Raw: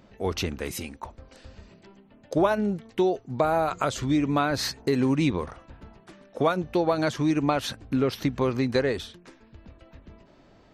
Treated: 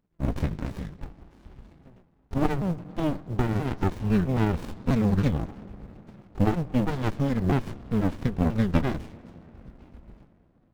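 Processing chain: repeated pitch sweeps -9 st, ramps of 0.327 s; high shelf 5400 Hz -4.5 dB; notch 610 Hz, Q 12; in parallel at -9 dB: short-mantissa float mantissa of 2-bit; on the sum: gate with hold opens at -41 dBFS; on a send at -17.5 dB: tape spacing loss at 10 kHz 20 dB + reverb RT60 4.5 s, pre-delay 68 ms; on the sum: running maximum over 65 samples

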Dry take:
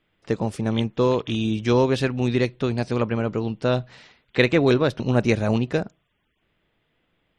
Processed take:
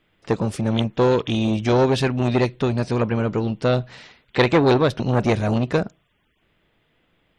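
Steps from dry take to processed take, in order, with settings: core saturation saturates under 1000 Hz; gain +5 dB

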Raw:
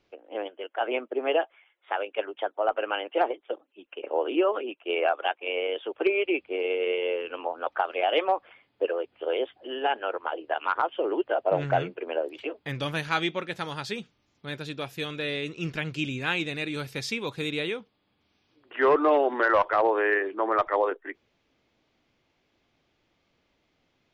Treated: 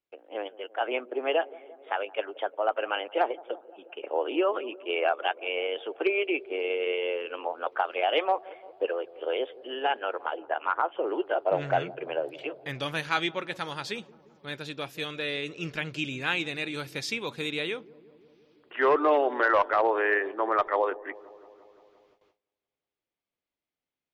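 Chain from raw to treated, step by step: 10.37–11.07 LPF 2200 Hz 12 dB/oct; dark delay 0.173 s, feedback 70%, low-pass 740 Hz, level -18.5 dB; gate with hold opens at -53 dBFS; low shelf 320 Hz -6 dB

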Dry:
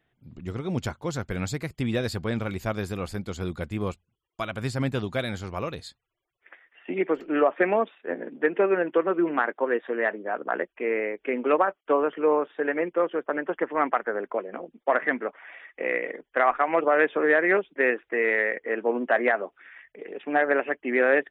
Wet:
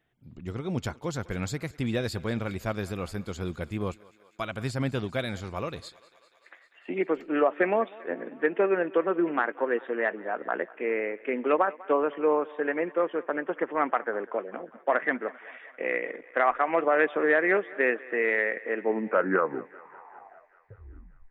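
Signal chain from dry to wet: tape stop at the end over 2.57 s; thinning echo 0.197 s, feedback 73%, high-pass 380 Hz, level -20.5 dB; gain -2 dB

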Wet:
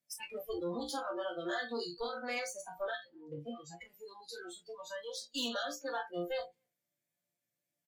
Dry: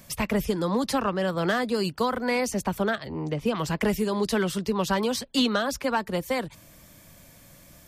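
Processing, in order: 3.3–5.3 compressor 5:1, threshold -25 dBFS, peak gain reduction 5.5 dB; bell 1100 Hz -9.5 dB 0.45 oct; added harmonics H 7 -30 dB, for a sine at -13.5 dBFS; resonator bank A#2 major, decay 0.36 s; speakerphone echo 0.25 s, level -22 dB; hard clip -39 dBFS, distortion -12 dB; HPF 120 Hz 12 dB/oct; low shelf 170 Hz -9 dB; tube stage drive 41 dB, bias 0.75; spectral noise reduction 27 dB; gain +13 dB

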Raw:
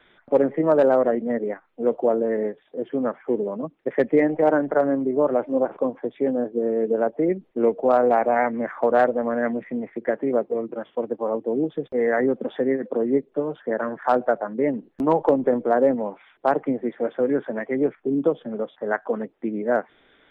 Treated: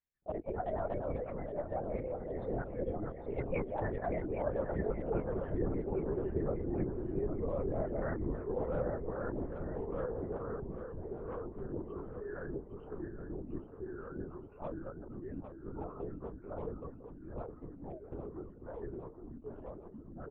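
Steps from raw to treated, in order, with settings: per-bin expansion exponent 1.5; Doppler pass-by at 4.5, 53 m/s, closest 12 m; notch 3000 Hz, Q 28; reverse; compressor 16:1, threshold -44 dBFS, peak gain reduction 25.5 dB; reverse; low-pass opened by the level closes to 1300 Hz, open at -46 dBFS; echoes that change speed 0.151 s, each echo -2 st, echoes 2; on a send: feedback echo 0.808 s, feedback 60%, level -9 dB; on the sum: LPC vocoder at 8 kHz whisper; gain +11 dB

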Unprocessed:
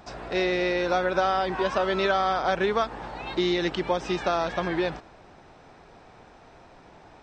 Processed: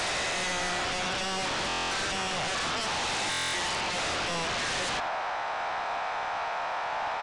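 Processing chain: spectral swells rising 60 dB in 1.81 s; HPF 670 Hz 24 dB/oct; reverse; compressor 12:1, threshold -36 dBFS, peak gain reduction 17.5 dB; reverse; overdrive pedal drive 11 dB, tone 1600 Hz, clips at -26 dBFS; in parallel at +1 dB: sine folder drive 14 dB, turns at -27.5 dBFS; on the sum: downsampling 22050 Hz; speakerphone echo 90 ms, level -16 dB; stuck buffer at 1.68/3.3, samples 1024, times 9; gain -2 dB

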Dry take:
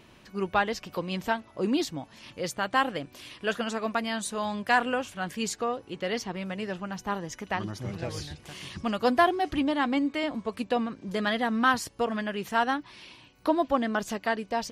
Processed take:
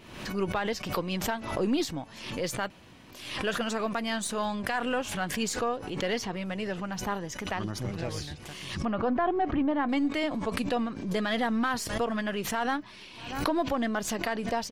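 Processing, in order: half-wave gain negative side -3 dB; 8.85–9.89 LPF 1600 Hz 12 dB/oct; limiter -20.5 dBFS, peak gain reduction 10.5 dB; outdoor echo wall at 110 m, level -29 dB; 2.7–3.11 room tone; backwards sustainer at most 65 dB/s; gain +1.5 dB

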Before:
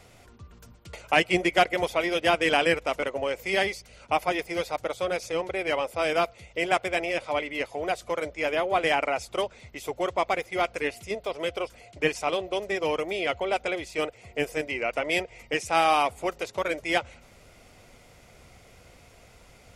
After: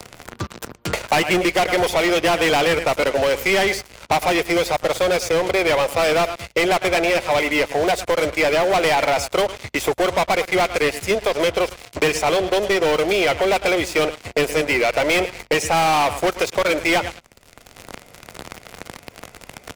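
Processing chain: feedback echo 0.106 s, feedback 25%, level -19 dB; sample leveller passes 5; three-band squash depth 70%; gain -5 dB

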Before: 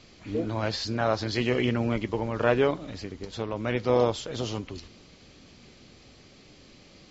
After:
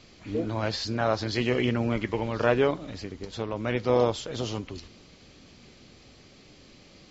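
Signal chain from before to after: 1.96–2.45 bell 1200 Hz -> 5600 Hz +10.5 dB 0.64 oct

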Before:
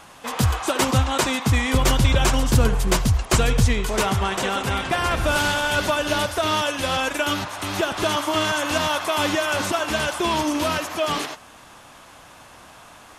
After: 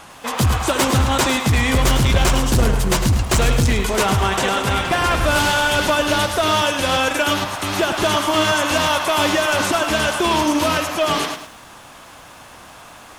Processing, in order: overloaded stage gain 16.5 dB; lo-fi delay 0.105 s, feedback 35%, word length 8-bit, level -8.5 dB; gain +4.5 dB

